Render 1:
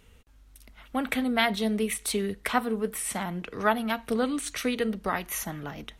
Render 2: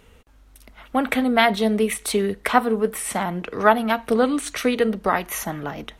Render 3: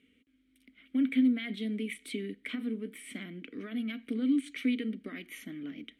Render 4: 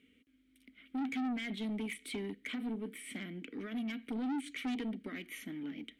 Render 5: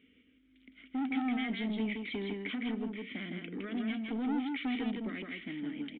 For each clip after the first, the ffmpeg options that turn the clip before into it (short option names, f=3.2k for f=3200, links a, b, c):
-af "equalizer=f=670:w=0.41:g=6.5,volume=3dB"
-filter_complex "[0:a]alimiter=limit=-12dB:level=0:latency=1:release=27,aexciter=amount=3.5:drive=4.7:freq=8.1k,asplit=3[a][b][c];[a]bandpass=f=270:t=q:w=8,volume=0dB[d];[b]bandpass=f=2.29k:t=q:w=8,volume=-6dB[e];[c]bandpass=f=3.01k:t=q:w=8,volume=-9dB[f];[d][e][f]amix=inputs=3:normalize=0"
-af "asoftclip=type=tanh:threshold=-33dB"
-filter_complex "[0:a]asplit=2[a][b];[b]aecho=0:1:161:0.668[c];[a][c]amix=inputs=2:normalize=0,aresample=8000,aresample=44100,volume=2dB"